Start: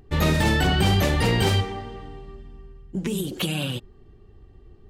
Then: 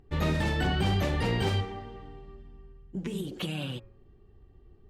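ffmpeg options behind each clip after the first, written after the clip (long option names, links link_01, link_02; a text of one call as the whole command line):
ffmpeg -i in.wav -af "lowpass=frequency=3600:poles=1,bandreject=frequency=109.7:width_type=h:width=4,bandreject=frequency=219.4:width_type=h:width=4,bandreject=frequency=329.1:width_type=h:width=4,bandreject=frequency=438.8:width_type=h:width=4,bandreject=frequency=548.5:width_type=h:width=4,bandreject=frequency=658.2:width_type=h:width=4,bandreject=frequency=767.9:width_type=h:width=4,bandreject=frequency=877.6:width_type=h:width=4,bandreject=frequency=987.3:width_type=h:width=4,bandreject=frequency=1097:width_type=h:width=4,bandreject=frequency=1206.7:width_type=h:width=4,bandreject=frequency=1316.4:width_type=h:width=4,bandreject=frequency=1426.1:width_type=h:width=4,bandreject=frequency=1535.8:width_type=h:width=4,bandreject=frequency=1645.5:width_type=h:width=4,bandreject=frequency=1755.2:width_type=h:width=4,bandreject=frequency=1864.9:width_type=h:width=4,bandreject=frequency=1974.6:width_type=h:width=4,bandreject=frequency=2084.3:width_type=h:width=4,bandreject=frequency=2194:width_type=h:width=4,bandreject=frequency=2303.7:width_type=h:width=4,bandreject=frequency=2413.4:width_type=h:width=4,bandreject=frequency=2523.1:width_type=h:width=4,volume=-6.5dB" out.wav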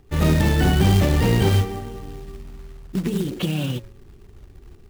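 ffmpeg -i in.wav -filter_complex "[0:a]acrossover=split=460|5700[link_01][link_02][link_03];[link_01]dynaudnorm=framelen=120:gausssize=3:maxgain=6dB[link_04];[link_04][link_02][link_03]amix=inputs=3:normalize=0,acrusher=bits=4:mode=log:mix=0:aa=0.000001,volume=5dB" out.wav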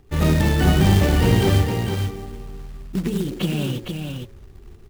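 ffmpeg -i in.wav -af "aecho=1:1:460:0.531" out.wav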